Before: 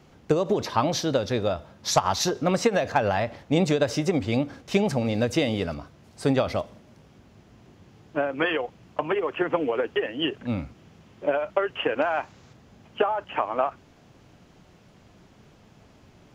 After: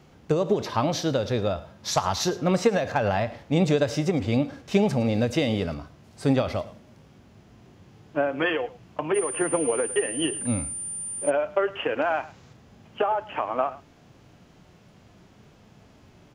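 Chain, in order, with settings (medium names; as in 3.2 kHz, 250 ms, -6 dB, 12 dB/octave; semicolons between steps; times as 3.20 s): delay 109 ms -20 dB; harmonic-percussive split percussive -6 dB; 9.14–11.29 s: whistle 9.2 kHz -33 dBFS; trim +2.5 dB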